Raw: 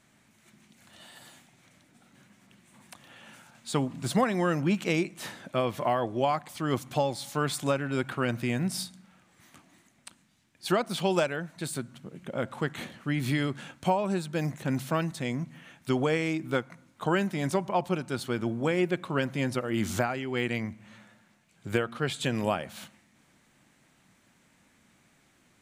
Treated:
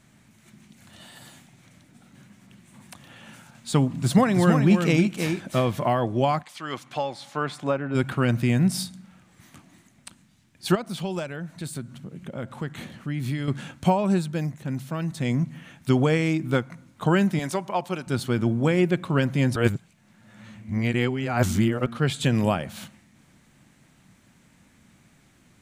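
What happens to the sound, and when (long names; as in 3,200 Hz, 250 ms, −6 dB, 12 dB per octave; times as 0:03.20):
0:03.85–0:05.74: single-tap delay 323 ms −5.5 dB
0:06.42–0:07.94: resonant band-pass 3,100 Hz → 580 Hz, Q 0.57
0:10.75–0:13.48: downward compressor 1.5 to 1, threshold −47 dBFS
0:14.16–0:15.31: duck −8.5 dB, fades 0.34 s
0:17.39–0:18.07: high-pass filter 580 Hz 6 dB per octave
0:19.56–0:21.86: reverse
whole clip: bass and treble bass +8 dB, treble +1 dB; level +3 dB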